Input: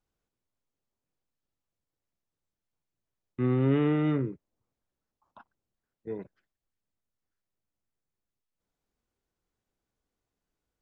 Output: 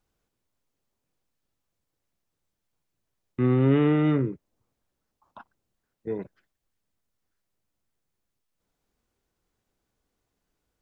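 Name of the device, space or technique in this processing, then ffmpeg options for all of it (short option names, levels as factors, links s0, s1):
parallel compression: -filter_complex "[0:a]asplit=2[s0][s1];[s1]acompressor=threshold=0.0141:ratio=6,volume=0.422[s2];[s0][s2]amix=inputs=2:normalize=0,volume=1.5"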